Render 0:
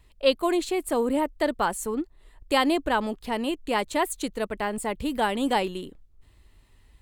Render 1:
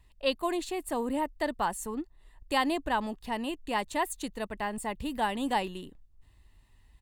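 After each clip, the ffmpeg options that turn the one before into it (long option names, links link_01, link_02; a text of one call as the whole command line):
ffmpeg -i in.wav -af "aecho=1:1:1.1:0.34,volume=-5.5dB" out.wav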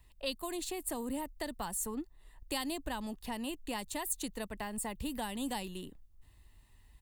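ffmpeg -i in.wav -filter_complex "[0:a]highshelf=frequency=9400:gain=9.5,acrossover=split=210|3600[link_01][link_02][link_03];[link_02]acompressor=threshold=-37dB:ratio=6[link_04];[link_01][link_04][link_03]amix=inputs=3:normalize=0,volume=-1dB" out.wav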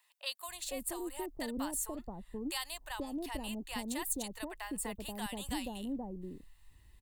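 ffmpeg -i in.wav -filter_complex "[0:a]acrossover=split=720[link_01][link_02];[link_01]adelay=480[link_03];[link_03][link_02]amix=inputs=2:normalize=0" out.wav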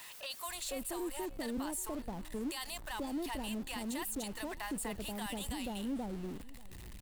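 ffmpeg -i in.wav -af "aeval=exprs='val(0)+0.5*0.00596*sgn(val(0))':channel_layout=same,alimiter=level_in=7dB:limit=-24dB:level=0:latency=1:release=16,volume=-7dB,aecho=1:1:586|1172|1758:0.0891|0.0365|0.015" out.wav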